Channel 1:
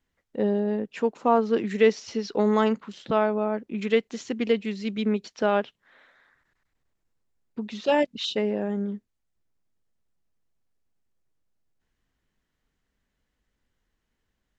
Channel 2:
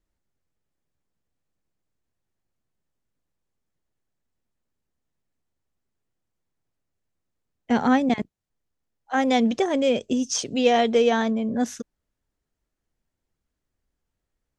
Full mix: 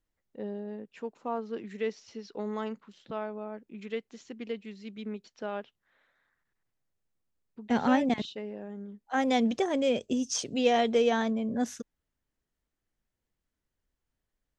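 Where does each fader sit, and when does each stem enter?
-13.0, -5.5 dB; 0.00, 0.00 s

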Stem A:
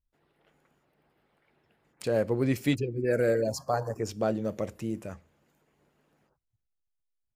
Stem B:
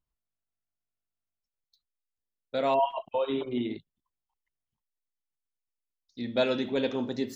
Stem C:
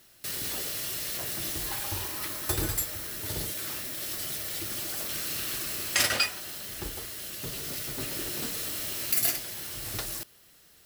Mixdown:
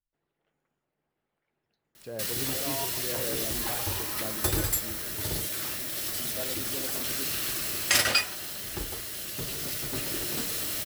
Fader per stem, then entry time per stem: -12.0, -13.0, +2.0 dB; 0.00, 0.00, 1.95 s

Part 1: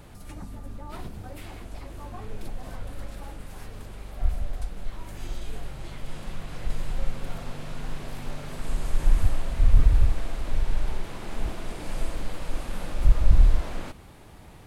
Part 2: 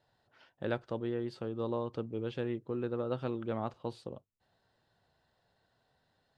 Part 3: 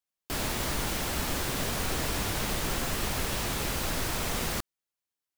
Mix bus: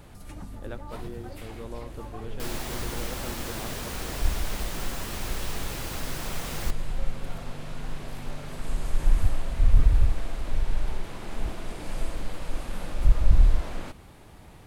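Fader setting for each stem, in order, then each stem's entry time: -1.0, -6.0, -4.5 dB; 0.00, 0.00, 2.10 s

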